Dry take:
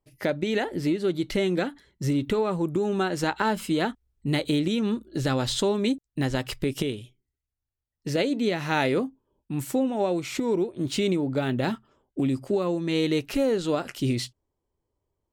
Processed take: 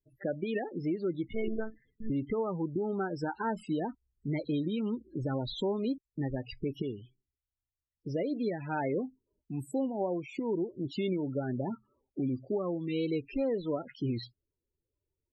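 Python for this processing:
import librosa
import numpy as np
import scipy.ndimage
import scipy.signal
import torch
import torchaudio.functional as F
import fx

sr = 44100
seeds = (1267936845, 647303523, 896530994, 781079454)

y = fx.wow_flutter(x, sr, seeds[0], rate_hz=2.1, depth_cents=54.0)
y = fx.lpc_monotone(y, sr, seeds[1], pitch_hz=220.0, order=10, at=(1.28, 2.1))
y = fx.spec_topn(y, sr, count=16)
y = F.gain(torch.from_numpy(y), -7.0).numpy()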